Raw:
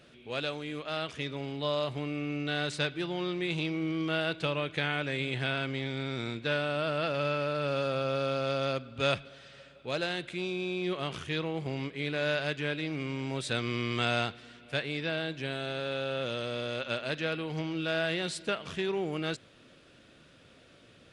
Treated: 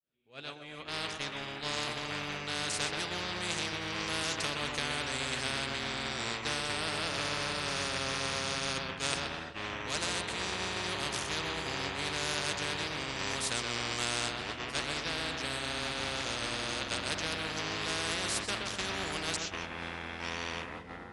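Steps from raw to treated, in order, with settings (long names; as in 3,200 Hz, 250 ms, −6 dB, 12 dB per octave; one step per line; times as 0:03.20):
fade in at the beginning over 0.97 s
tape delay 126 ms, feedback 51%, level −4 dB, low-pass 1,400 Hz
delay with pitch and tempo change per echo 422 ms, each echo −6 semitones, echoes 3, each echo −6 dB
downward expander −27 dBFS
every bin compressed towards the loudest bin 4 to 1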